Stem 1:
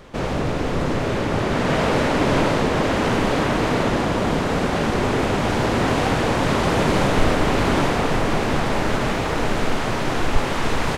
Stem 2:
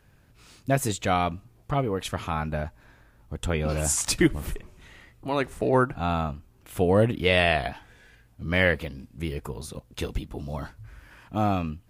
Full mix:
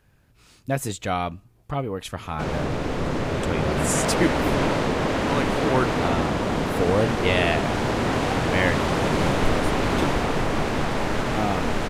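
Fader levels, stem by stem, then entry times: −3.5, −1.5 decibels; 2.25, 0.00 seconds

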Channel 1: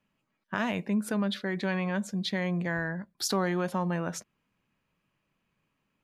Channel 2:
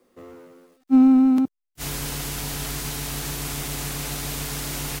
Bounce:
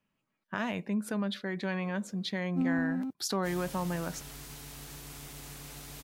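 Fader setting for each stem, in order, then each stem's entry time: −3.5, −16.0 decibels; 0.00, 1.65 seconds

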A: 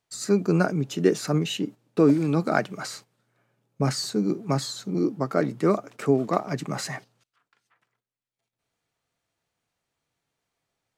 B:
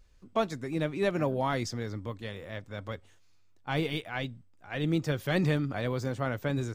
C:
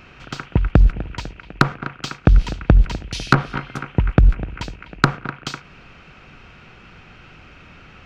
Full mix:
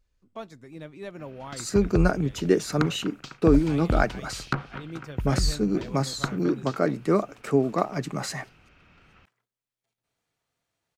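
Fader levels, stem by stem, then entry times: −0.5, −10.5, −13.0 decibels; 1.45, 0.00, 1.20 seconds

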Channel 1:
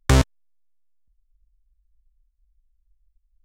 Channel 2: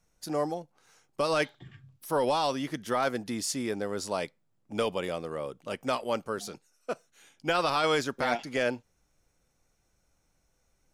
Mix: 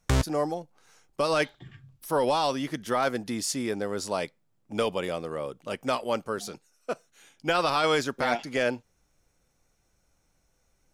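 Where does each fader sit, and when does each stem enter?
−7.5, +2.0 decibels; 0.00, 0.00 seconds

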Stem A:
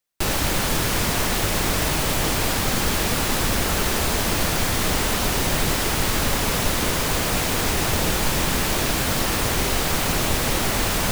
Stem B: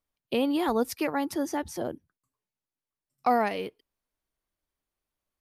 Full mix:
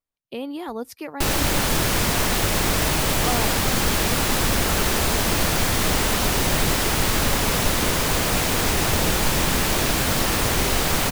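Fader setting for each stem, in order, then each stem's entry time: +1.0, −5.0 decibels; 1.00, 0.00 seconds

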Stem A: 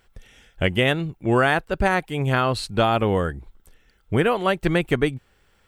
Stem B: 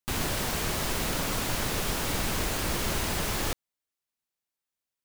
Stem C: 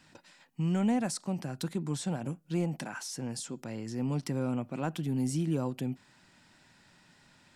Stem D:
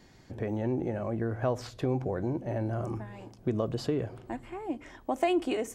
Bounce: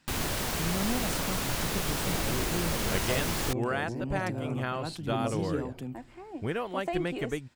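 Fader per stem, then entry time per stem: −12.5, −1.5, −4.5, −6.5 decibels; 2.30, 0.00, 0.00, 1.65 seconds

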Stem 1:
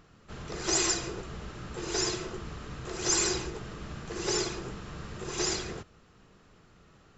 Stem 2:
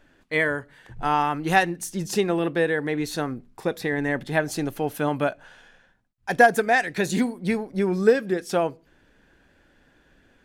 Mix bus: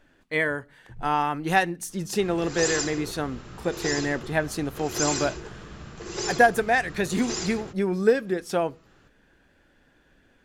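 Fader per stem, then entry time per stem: −1.0, −2.0 decibels; 1.90, 0.00 seconds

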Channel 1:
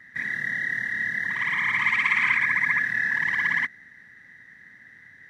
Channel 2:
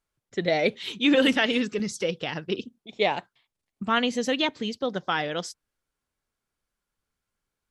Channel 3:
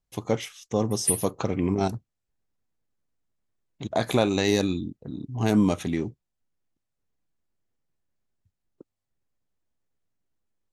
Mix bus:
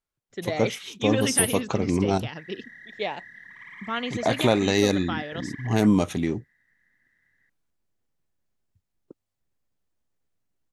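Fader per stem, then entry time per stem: −19.0, −6.0, +1.5 decibels; 2.20, 0.00, 0.30 seconds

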